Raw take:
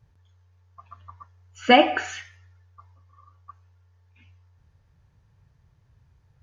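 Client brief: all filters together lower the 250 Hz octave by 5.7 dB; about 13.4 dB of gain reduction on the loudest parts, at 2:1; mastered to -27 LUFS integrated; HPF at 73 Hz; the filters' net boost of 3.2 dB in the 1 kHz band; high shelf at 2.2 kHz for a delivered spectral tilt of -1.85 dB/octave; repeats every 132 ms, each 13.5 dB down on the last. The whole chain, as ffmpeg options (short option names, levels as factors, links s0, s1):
-af "highpass=73,equalizer=f=250:t=o:g=-7,equalizer=f=1000:t=o:g=4.5,highshelf=f=2200:g=8.5,acompressor=threshold=0.0251:ratio=2,aecho=1:1:132|264:0.211|0.0444,volume=1.88"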